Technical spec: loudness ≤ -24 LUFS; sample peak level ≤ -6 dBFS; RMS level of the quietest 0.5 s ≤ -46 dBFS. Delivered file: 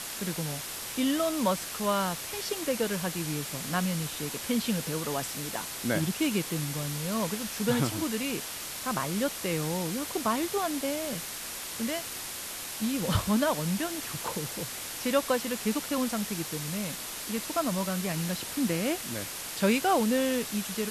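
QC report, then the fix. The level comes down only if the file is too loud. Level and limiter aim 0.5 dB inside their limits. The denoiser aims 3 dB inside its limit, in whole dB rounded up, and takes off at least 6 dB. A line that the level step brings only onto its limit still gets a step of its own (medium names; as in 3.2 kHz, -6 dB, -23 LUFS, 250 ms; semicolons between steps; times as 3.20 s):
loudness -30.0 LUFS: pass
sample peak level -12.5 dBFS: pass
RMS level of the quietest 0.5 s -38 dBFS: fail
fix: noise reduction 11 dB, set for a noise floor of -38 dBFS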